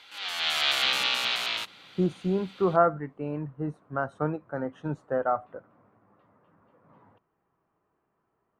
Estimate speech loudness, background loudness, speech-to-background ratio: -29.5 LUFS, -25.5 LUFS, -4.0 dB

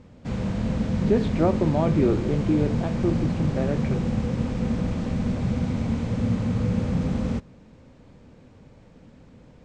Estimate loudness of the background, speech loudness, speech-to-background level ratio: -26.5 LUFS, -25.5 LUFS, 1.0 dB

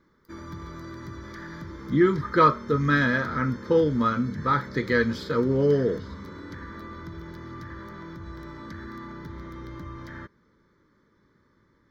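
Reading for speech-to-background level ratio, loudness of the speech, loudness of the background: 16.5 dB, -23.5 LUFS, -40.0 LUFS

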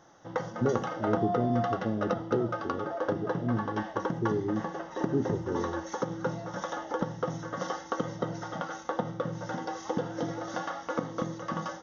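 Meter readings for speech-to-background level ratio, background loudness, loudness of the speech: 1.5 dB, -34.5 LUFS, -33.0 LUFS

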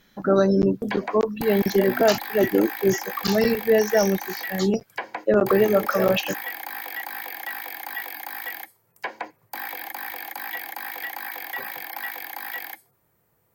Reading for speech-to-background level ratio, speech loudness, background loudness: 11.0 dB, -21.5 LUFS, -32.5 LUFS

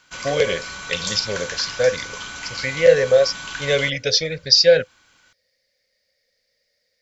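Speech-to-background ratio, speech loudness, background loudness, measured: 11.5 dB, -18.5 LUFS, -30.0 LUFS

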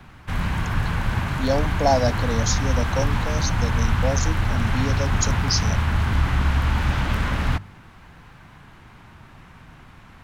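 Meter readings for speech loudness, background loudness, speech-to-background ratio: -26.5 LUFS, -23.5 LUFS, -3.0 dB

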